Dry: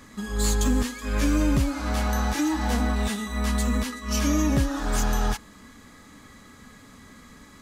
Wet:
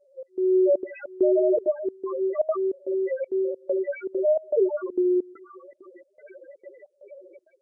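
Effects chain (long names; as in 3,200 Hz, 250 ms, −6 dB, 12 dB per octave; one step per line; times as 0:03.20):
frequency shifter +320 Hz
four-comb reverb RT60 2.5 s, combs from 29 ms, DRR 7.5 dB
asymmetric clip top −17.5 dBFS, bottom −14 dBFS
0:02.67–0:03.36: high-shelf EQ 4,700 Hz +8 dB
0:04.17–0:04.92: mains-hum notches 60/120/180/240/300/360/420 Hz
automatic gain control gain up to 16 dB
reverb reduction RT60 0.76 s
0:01.56–0:02.12: bass and treble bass −3 dB, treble −2 dB
spectral peaks only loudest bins 2
gate pattern "xxx..xxxxx." 199 BPM −24 dB
level −5 dB
Nellymoser 44 kbit/s 22,050 Hz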